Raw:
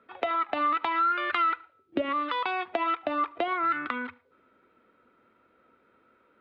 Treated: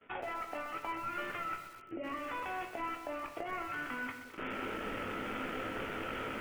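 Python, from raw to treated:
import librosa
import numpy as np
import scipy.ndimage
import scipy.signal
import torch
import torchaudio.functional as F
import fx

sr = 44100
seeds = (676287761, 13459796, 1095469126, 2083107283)

p1 = fx.cvsd(x, sr, bps=16000)
p2 = fx.recorder_agc(p1, sr, target_db=-23.5, rise_db_per_s=61.0, max_gain_db=30)
p3 = fx.spec_gate(p2, sr, threshold_db=-30, keep='strong')
p4 = fx.peak_eq(p3, sr, hz=1100.0, db=-5.5, octaves=0.56)
p5 = fx.level_steps(p4, sr, step_db=21)
p6 = fx.doubler(p5, sr, ms=19.0, db=-9.5)
p7 = p6 + fx.echo_feedback(p6, sr, ms=213, feedback_pct=42, wet_db=-14.5, dry=0)
p8 = fx.room_shoebox(p7, sr, seeds[0], volume_m3=60.0, walls='mixed', distance_m=0.32)
p9 = fx.echo_crushed(p8, sr, ms=125, feedback_pct=55, bits=8, wet_db=-11.0)
y = F.gain(torch.from_numpy(p9), 1.0).numpy()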